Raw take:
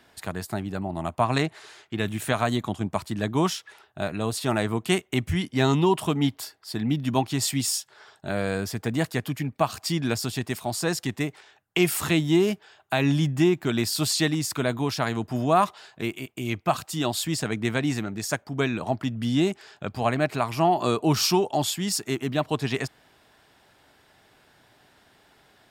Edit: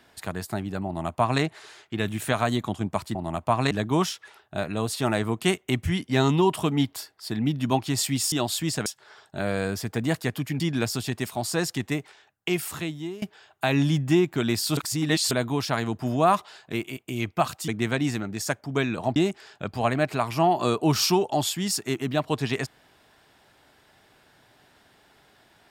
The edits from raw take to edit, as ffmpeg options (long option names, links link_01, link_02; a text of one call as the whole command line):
ffmpeg -i in.wav -filter_complex "[0:a]asplit=11[link_01][link_02][link_03][link_04][link_05][link_06][link_07][link_08][link_09][link_10][link_11];[link_01]atrim=end=3.152[link_12];[link_02]atrim=start=0.858:end=1.422[link_13];[link_03]atrim=start=3.148:end=7.762[link_14];[link_04]atrim=start=16.968:end=17.512[link_15];[link_05]atrim=start=7.758:end=9.502[link_16];[link_06]atrim=start=9.888:end=12.51,asetpts=PTS-STARTPTS,afade=type=out:start_time=1.362:duration=1.26:silence=0.1[link_17];[link_07]atrim=start=12.51:end=14.062,asetpts=PTS-STARTPTS,afade=type=in:duration=0.004:curve=hsin:silence=0.1[link_18];[link_08]atrim=start=14.058:end=14.602,asetpts=PTS-STARTPTS,areverse[link_19];[link_09]atrim=start=14.598:end=16.972[link_20];[link_10]atrim=start=17.508:end=18.992[link_21];[link_11]atrim=start=19.368[link_22];[link_12][link_13]acrossfade=duration=0.004:curve1=hsin:curve2=hsin[link_23];[link_23][link_14]acrossfade=duration=0.004:curve1=hsin:curve2=hsin[link_24];[link_24][link_15]acrossfade=duration=0.004:curve1=hsin:curve2=hsin[link_25];[link_25][link_16]acrossfade=duration=0.004:curve1=hsin:curve2=hsin[link_26];[link_17][link_18]concat=n=2:v=0:a=1[link_27];[link_26][link_27]acrossfade=duration=0.004:curve1=hsin:curve2=hsin[link_28];[link_28][link_19]acrossfade=duration=0.004:curve1=hsin:curve2=hsin[link_29];[link_29][link_20]acrossfade=duration=0.004:curve1=hsin:curve2=hsin[link_30];[link_30][link_21]acrossfade=duration=0.004:curve1=hsin:curve2=hsin[link_31];[link_31][link_22]acrossfade=duration=0.004:curve1=hsin:curve2=hsin" out.wav